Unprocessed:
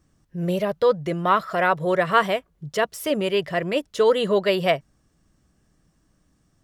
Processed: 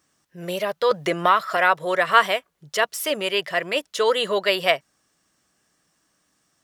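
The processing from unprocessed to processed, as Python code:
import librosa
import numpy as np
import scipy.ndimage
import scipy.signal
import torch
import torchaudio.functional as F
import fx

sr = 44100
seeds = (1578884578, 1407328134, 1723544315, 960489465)

y = fx.highpass(x, sr, hz=1200.0, slope=6)
y = fx.band_squash(y, sr, depth_pct=70, at=(0.91, 1.57))
y = y * 10.0 ** (6.0 / 20.0)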